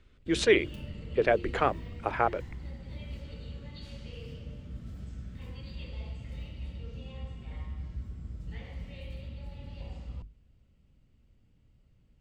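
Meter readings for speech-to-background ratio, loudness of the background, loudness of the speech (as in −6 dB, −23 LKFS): 14.5 dB, −43.0 LKFS, −28.5 LKFS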